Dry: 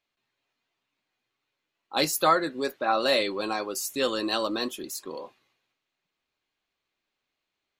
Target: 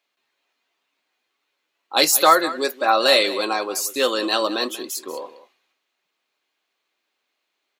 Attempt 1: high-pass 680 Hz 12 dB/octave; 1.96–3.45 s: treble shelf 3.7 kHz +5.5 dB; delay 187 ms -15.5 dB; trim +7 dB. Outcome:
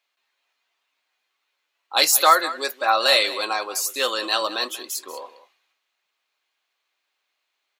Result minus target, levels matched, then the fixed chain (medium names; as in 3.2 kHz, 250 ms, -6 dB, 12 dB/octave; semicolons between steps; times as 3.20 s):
250 Hz band -9.0 dB
high-pass 330 Hz 12 dB/octave; 1.96–3.45 s: treble shelf 3.7 kHz +5.5 dB; delay 187 ms -15.5 dB; trim +7 dB